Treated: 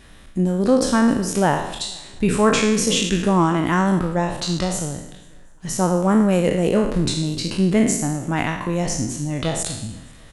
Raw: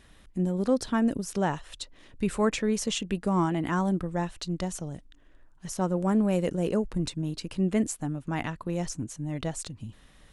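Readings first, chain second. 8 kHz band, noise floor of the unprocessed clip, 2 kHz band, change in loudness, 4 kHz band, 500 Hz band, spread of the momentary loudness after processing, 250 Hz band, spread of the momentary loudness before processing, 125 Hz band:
+12.5 dB, −57 dBFS, +11.5 dB, +9.0 dB, +12.0 dB, +9.5 dB, 10 LU, +8.5 dB, 13 LU, +8.5 dB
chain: peak hold with a decay on every bin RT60 0.78 s
on a send: repeating echo 243 ms, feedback 45%, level −22 dB
on the sum: level +7.5 dB

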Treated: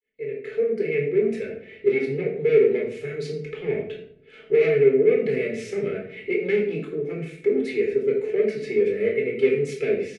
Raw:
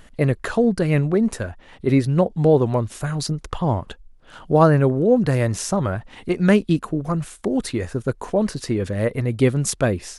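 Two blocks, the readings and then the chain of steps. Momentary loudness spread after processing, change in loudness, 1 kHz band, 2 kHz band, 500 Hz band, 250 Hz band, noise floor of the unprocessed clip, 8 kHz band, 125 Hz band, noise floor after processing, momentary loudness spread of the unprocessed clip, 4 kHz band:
13 LU, −2.5 dB, below −20 dB, −1.0 dB, +1.5 dB, −9.5 dB, −48 dBFS, below −15 dB, −15.5 dB, −49 dBFS, 10 LU, can't be measured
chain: fade in at the beginning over 1.41 s
comb filter 4.6 ms, depth 55%
soft clipping −18.5 dBFS, distortion −7 dB
pair of resonant band-passes 970 Hz, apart 2.4 octaves
rectangular room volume 1,000 cubic metres, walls furnished, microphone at 4.1 metres
level +4.5 dB

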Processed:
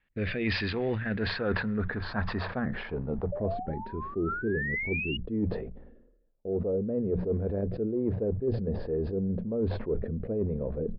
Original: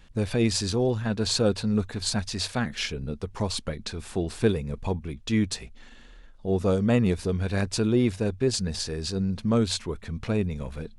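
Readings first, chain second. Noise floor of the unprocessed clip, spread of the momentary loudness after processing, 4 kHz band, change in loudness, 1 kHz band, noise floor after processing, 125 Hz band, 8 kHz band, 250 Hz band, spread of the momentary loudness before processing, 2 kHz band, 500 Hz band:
−49 dBFS, 4 LU, −10.5 dB, −4.0 dB, −1.5 dB, −60 dBFS, −5.0 dB, below −40 dB, −5.0 dB, 9 LU, +2.5 dB, −2.5 dB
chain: noise gate with hold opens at −34 dBFS
in parallel at −7.5 dB: floating-point word with a short mantissa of 2 bits
on the sum: downsampling to 11,025 Hz
parametric band 1,800 Hz +6 dB 0.35 octaves
low-pass filter sweep 2,300 Hz → 500 Hz, 0:00.79–0:04.24
sound drawn into the spectrogram rise, 0:03.32–0:05.17, 570–2,900 Hz −30 dBFS
rotating-speaker cabinet horn 1.2 Hz
gain on a spectral selection 0:03.63–0:05.24, 420–1,300 Hz −12 dB
low-shelf EQ 170 Hz −5 dB
reversed playback
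downward compressor 12 to 1, threshold −26 dBFS, peak gain reduction 14.5 dB
reversed playback
mains-hum notches 60/120/180 Hz
level that may fall only so fast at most 54 dB per second

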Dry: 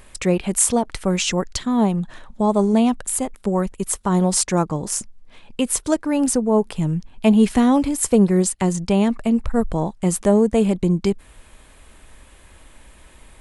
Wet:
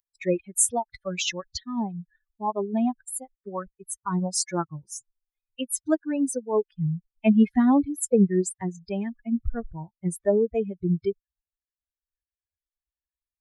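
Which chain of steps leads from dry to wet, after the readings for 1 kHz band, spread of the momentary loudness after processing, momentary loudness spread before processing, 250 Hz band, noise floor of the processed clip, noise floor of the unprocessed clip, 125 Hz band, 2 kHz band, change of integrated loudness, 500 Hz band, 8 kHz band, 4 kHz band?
−7.0 dB, 15 LU, 8 LU, −7.0 dB, below −85 dBFS, −49 dBFS, −8.0 dB, −7.0 dB, −6.5 dB, −6.5 dB, −7.0 dB, −6.0 dB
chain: spectral dynamics exaggerated over time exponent 3

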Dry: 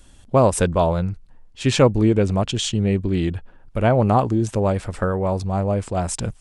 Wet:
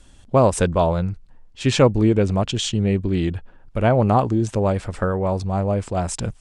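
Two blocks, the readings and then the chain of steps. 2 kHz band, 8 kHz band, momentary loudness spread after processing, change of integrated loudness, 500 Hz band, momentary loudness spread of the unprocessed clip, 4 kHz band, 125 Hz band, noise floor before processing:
0.0 dB, −1.5 dB, 9 LU, 0.0 dB, 0.0 dB, 8 LU, 0.0 dB, 0.0 dB, −48 dBFS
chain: low-pass filter 9,300 Hz 12 dB per octave

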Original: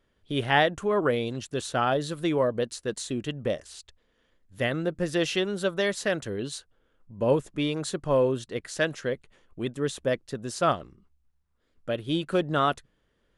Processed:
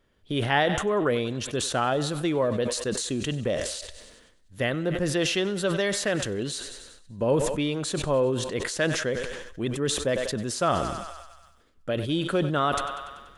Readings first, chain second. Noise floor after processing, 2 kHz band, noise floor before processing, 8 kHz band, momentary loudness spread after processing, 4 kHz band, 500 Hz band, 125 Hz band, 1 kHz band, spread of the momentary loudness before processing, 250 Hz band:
−58 dBFS, +1.0 dB, −71 dBFS, +7.5 dB, 9 LU, +3.0 dB, +0.5 dB, +3.0 dB, +0.5 dB, 11 LU, +1.5 dB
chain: in parallel at +0.5 dB: downward compressor, threshold −30 dBFS, peak gain reduction 13.5 dB
on the sum: feedback echo with a high-pass in the loop 96 ms, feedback 68%, high-pass 430 Hz, level −18.5 dB
level that may fall only so fast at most 43 dB per second
level −3.5 dB

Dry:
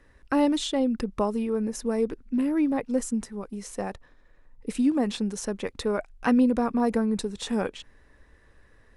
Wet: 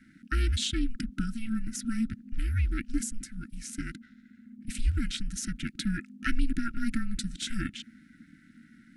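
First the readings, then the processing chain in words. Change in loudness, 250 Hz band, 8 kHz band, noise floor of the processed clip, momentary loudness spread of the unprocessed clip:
−6.5 dB, −9.0 dB, +0.5 dB, −58 dBFS, 12 LU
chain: ring modulation 230 Hz
linear-phase brick-wall band-stop 340–1,300 Hz
level +3.5 dB

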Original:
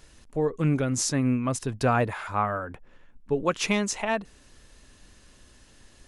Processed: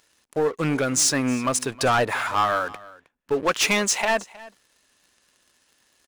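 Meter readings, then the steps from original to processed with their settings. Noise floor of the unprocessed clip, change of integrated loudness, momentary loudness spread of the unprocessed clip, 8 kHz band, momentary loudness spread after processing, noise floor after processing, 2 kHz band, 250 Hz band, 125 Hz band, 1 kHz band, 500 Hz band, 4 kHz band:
−56 dBFS, +4.0 dB, 7 LU, +8.5 dB, 9 LU, −68 dBFS, +7.5 dB, 0.0 dB, −4.5 dB, +5.0 dB, +3.5 dB, +9.0 dB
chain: high-pass filter 750 Hz 6 dB per octave
leveller curve on the samples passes 3
single-tap delay 315 ms −20.5 dB

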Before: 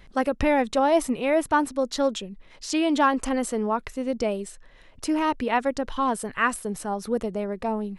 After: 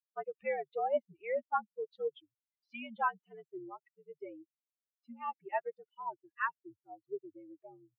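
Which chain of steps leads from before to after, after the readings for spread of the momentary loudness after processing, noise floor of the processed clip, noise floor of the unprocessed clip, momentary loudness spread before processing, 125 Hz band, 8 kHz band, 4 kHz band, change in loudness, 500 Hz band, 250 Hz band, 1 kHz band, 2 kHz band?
19 LU, below −85 dBFS, −51 dBFS, 9 LU, can't be measured, below −40 dB, −24.0 dB, −13.5 dB, −13.5 dB, −27.0 dB, −12.0 dB, −12.5 dB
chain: spectral dynamics exaggerated over time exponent 3
single-sideband voice off tune −77 Hz 480–2,700 Hz
level −6.5 dB

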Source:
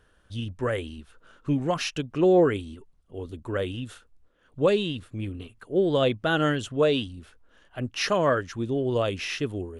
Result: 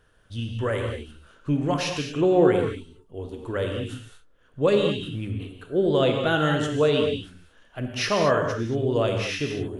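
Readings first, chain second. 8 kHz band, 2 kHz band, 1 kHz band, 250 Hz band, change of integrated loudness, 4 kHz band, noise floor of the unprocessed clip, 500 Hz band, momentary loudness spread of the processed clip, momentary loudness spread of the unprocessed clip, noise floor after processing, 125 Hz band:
+2.0 dB, +1.5 dB, +2.0 dB, +1.5 dB, +1.5 dB, +2.0 dB, −63 dBFS, +2.0 dB, 16 LU, 17 LU, −58 dBFS, +3.0 dB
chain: reverb whose tail is shaped and stops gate 250 ms flat, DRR 2.5 dB

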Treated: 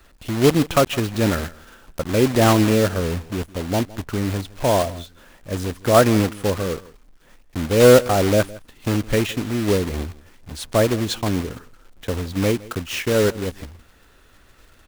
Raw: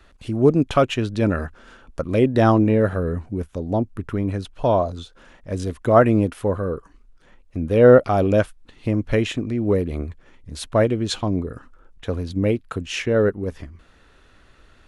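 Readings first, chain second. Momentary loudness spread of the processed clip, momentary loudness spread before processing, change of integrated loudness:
15 LU, 16 LU, +0.5 dB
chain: one scale factor per block 3 bits
single-tap delay 163 ms −20.5 dB

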